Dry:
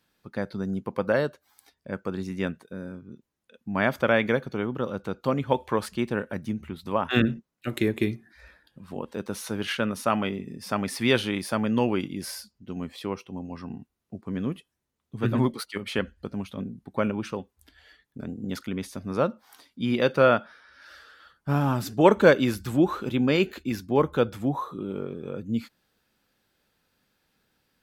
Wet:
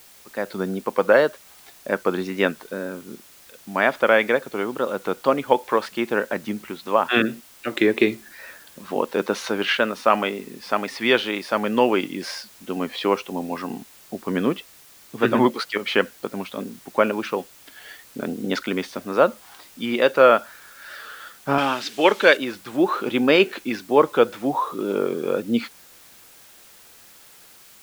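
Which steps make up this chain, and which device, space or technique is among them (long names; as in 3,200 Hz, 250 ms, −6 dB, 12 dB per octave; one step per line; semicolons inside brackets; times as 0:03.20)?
dictaphone (band-pass filter 360–4,100 Hz; automatic gain control gain up to 16 dB; tape wow and flutter; white noise bed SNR 26 dB)
0:21.58–0:22.37: meter weighting curve D
level −1.5 dB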